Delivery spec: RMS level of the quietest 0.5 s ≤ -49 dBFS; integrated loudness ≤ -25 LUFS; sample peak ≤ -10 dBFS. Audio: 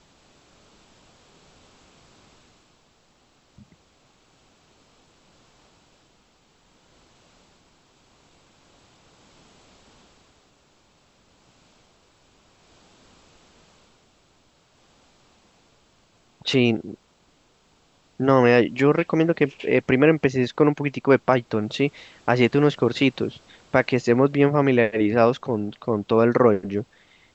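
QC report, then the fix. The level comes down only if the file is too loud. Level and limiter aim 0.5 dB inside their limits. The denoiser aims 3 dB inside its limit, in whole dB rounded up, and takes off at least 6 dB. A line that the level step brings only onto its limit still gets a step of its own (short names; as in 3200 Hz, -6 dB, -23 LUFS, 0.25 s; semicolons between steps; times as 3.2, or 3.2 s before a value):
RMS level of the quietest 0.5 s -61 dBFS: OK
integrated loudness -20.5 LUFS: fail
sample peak -2.5 dBFS: fail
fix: gain -5 dB; limiter -10.5 dBFS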